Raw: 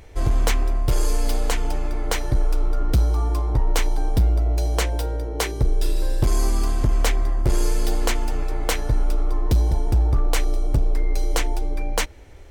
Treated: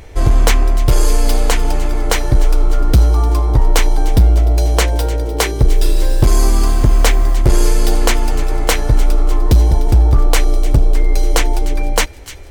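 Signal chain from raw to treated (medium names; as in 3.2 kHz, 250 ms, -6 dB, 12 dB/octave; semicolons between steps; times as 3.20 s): 5.69–7.35 s: word length cut 8-bit, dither none; feedback echo behind a high-pass 300 ms, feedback 64%, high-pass 1.9 kHz, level -15 dB; trim +8.5 dB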